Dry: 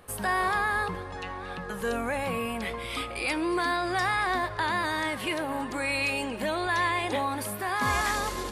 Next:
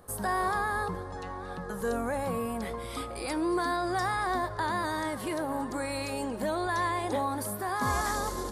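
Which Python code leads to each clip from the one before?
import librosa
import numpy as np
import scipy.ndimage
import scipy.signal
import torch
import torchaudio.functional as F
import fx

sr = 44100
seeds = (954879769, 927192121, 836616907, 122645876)

y = fx.peak_eq(x, sr, hz=2600.0, db=-14.5, octaves=0.96)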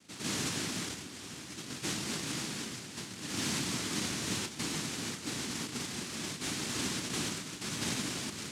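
y = fx.noise_vocoder(x, sr, seeds[0], bands=1)
y = fx.low_shelf_res(y, sr, hz=410.0, db=11.0, q=1.5)
y = y * librosa.db_to_amplitude(-7.5)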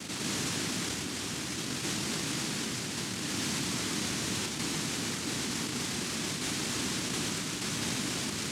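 y = fx.env_flatten(x, sr, amount_pct=70)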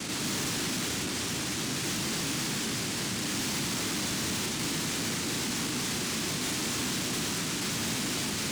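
y = 10.0 ** (-36.5 / 20.0) * np.tanh(x / 10.0 ** (-36.5 / 20.0))
y = fx.room_flutter(y, sr, wall_m=6.2, rt60_s=0.2)
y = y * librosa.db_to_amplitude(7.5)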